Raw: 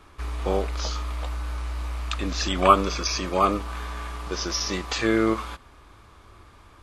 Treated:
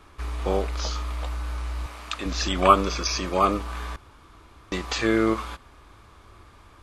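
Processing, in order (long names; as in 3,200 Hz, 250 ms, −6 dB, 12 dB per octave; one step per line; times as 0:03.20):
0:01.86–0:02.26: high-pass filter 280 Hz 6 dB per octave
0:03.96–0:04.72: fill with room tone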